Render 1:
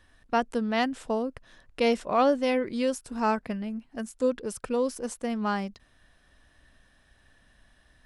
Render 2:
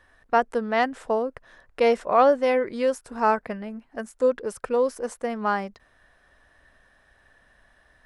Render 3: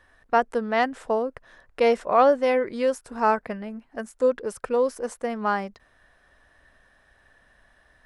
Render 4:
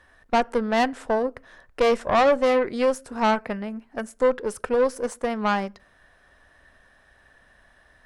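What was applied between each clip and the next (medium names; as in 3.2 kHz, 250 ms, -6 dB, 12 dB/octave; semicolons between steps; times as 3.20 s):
high-order bell 910 Hz +8 dB 2.7 oct; trim -2.5 dB
no audible change
on a send at -21.5 dB: reverberation RT60 0.40 s, pre-delay 4 ms; on the sum: valve stage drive 19 dB, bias 0.6; trim +5.5 dB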